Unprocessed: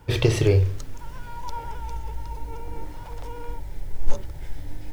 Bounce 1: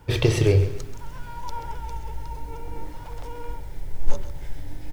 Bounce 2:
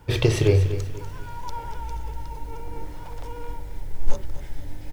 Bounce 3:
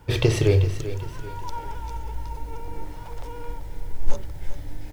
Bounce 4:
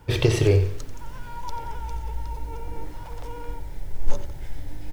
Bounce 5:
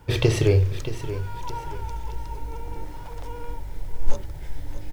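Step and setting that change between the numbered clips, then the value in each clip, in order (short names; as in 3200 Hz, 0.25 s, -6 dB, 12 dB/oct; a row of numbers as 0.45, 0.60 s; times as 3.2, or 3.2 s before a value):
feedback echo, time: 132, 243, 389, 89, 626 ms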